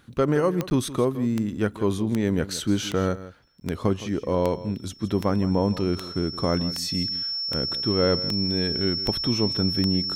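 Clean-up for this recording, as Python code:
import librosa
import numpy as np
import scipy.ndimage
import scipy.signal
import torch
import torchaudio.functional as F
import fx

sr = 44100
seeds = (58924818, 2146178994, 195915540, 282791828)

y = fx.fix_declick_ar(x, sr, threshold=10.0)
y = fx.notch(y, sr, hz=5400.0, q=30.0)
y = fx.fix_interpolate(y, sr, at_s=(0.7, 3.6), length_ms=10.0)
y = fx.fix_echo_inverse(y, sr, delay_ms=165, level_db=-15.5)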